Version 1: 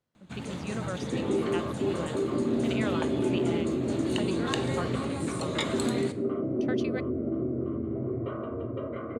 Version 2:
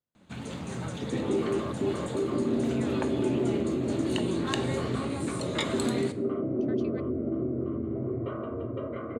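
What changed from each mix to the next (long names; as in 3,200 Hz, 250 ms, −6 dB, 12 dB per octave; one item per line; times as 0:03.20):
speech −11.0 dB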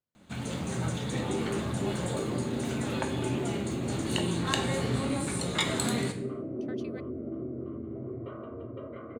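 first sound: send +7.5 dB
second sound −6.5 dB
master: add high-shelf EQ 10,000 Hz +10 dB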